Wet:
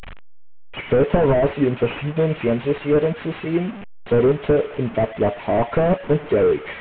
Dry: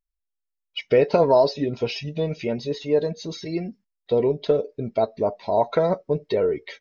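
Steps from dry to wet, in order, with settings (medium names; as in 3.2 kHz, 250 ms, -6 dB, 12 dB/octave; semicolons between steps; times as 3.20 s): one-bit delta coder 16 kbps, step -34.5 dBFS; trim +6.5 dB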